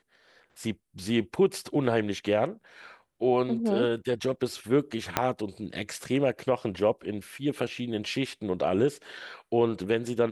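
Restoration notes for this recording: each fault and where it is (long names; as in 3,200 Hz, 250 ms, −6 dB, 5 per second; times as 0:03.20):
0:05.17: click −7 dBFS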